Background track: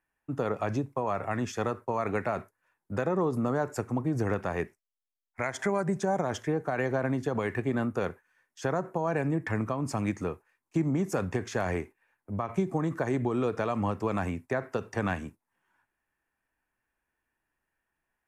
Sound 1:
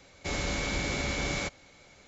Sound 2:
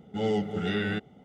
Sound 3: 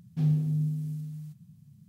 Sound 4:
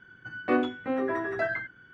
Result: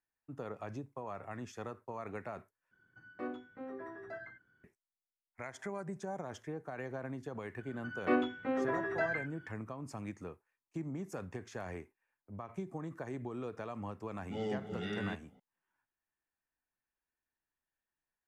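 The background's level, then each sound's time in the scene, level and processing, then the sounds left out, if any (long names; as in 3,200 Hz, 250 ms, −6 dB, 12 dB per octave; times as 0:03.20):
background track −13 dB
0:02.71: overwrite with 4 −16 dB + parametric band 2,800 Hz −7 dB 0.96 octaves
0:07.59: mix in 4 −5 dB
0:14.16: mix in 2 −10.5 dB
not used: 1, 3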